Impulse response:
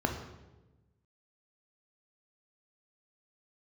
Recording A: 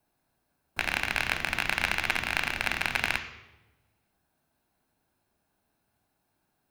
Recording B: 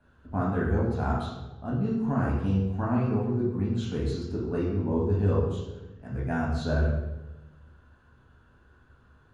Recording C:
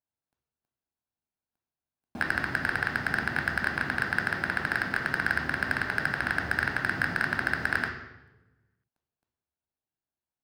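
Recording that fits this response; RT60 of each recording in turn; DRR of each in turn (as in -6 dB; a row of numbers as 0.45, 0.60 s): C; 1.1, 1.1, 1.1 s; 8.0, -5.0, 3.5 dB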